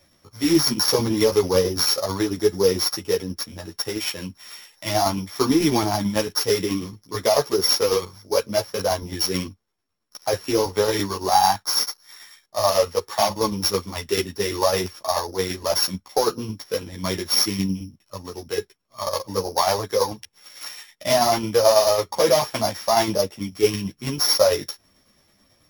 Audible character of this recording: a buzz of ramps at a fixed pitch in blocks of 8 samples; tremolo saw down 9.1 Hz, depth 50%; a shimmering, thickened sound

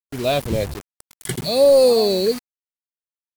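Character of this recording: phasing stages 2, 0.71 Hz, lowest notch 800–1900 Hz; a quantiser's noise floor 6-bit, dither none; AAC

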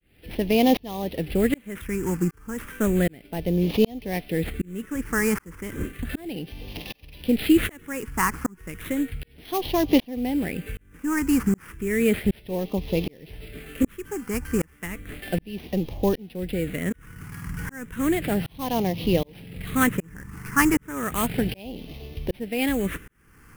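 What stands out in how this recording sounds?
aliases and images of a low sample rate 7.5 kHz, jitter 20%; phasing stages 4, 0.33 Hz, lowest notch 620–1400 Hz; tremolo saw up 1.3 Hz, depth 100%

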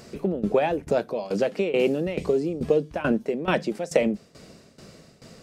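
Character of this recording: tremolo saw down 2.3 Hz, depth 85%

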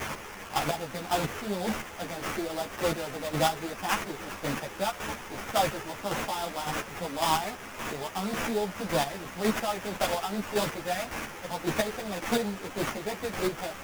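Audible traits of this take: a quantiser's noise floor 6-bit, dither triangular; chopped level 1.8 Hz, depth 60%, duty 25%; aliases and images of a low sample rate 4.2 kHz, jitter 20%; a shimmering, thickened sound

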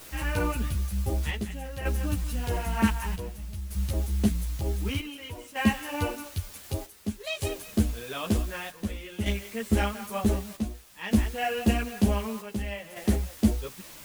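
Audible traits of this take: a quantiser's noise floor 8-bit, dither triangular; chopped level 0.54 Hz, depth 60%, duty 70%; a shimmering, thickened sound

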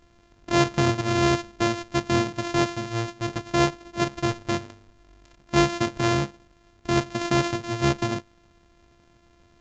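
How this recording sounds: a buzz of ramps at a fixed pitch in blocks of 128 samples; A-law

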